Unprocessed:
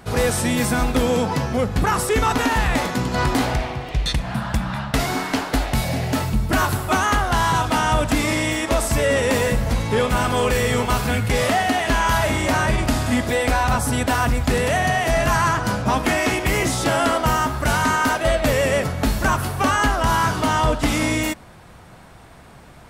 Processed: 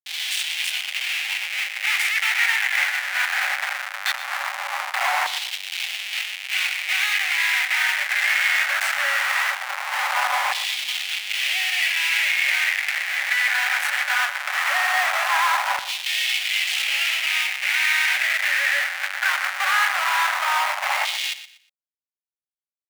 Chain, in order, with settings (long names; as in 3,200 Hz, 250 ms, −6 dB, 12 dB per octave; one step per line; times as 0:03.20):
comparator with hysteresis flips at −25.5 dBFS
Chebyshev high-pass with heavy ripple 550 Hz, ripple 9 dB
auto-filter high-pass saw down 0.19 Hz 970–3,500 Hz
repeating echo 120 ms, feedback 28%, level −13 dB
level +4 dB